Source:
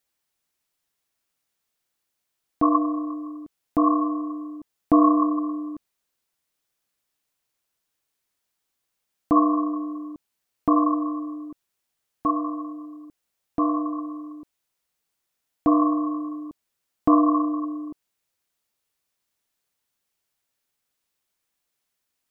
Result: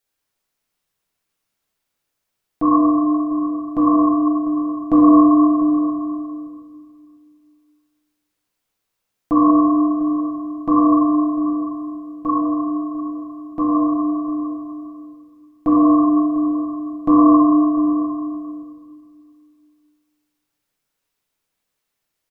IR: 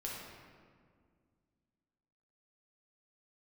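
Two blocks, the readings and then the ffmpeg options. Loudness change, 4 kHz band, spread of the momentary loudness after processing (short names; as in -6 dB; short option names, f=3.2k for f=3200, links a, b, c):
+6.5 dB, n/a, 16 LU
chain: -filter_complex "[0:a]asplit=2[a][b];[b]adelay=699.7,volume=-13dB,highshelf=f=4k:g=-15.7[c];[a][c]amix=inputs=2:normalize=0[d];[1:a]atrim=start_sample=2205[e];[d][e]afir=irnorm=-1:irlink=0,volume=3dB"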